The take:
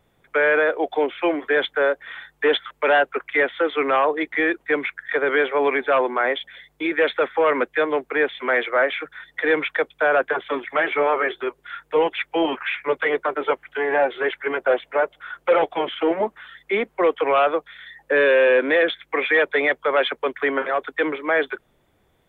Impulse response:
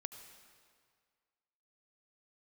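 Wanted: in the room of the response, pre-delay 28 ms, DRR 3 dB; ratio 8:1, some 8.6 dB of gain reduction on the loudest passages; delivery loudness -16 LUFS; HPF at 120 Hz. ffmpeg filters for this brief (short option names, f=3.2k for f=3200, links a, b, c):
-filter_complex "[0:a]highpass=120,acompressor=threshold=-22dB:ratio=8,asplit=2[a][b];[1:a]atrim=start_sample=2205,adelay=28[c];[b][c]afir=irnorm=-1:irlink=0,volume=0dB[d];[a][d]amix=inputs=2:normalize=0,volume=9.5dB"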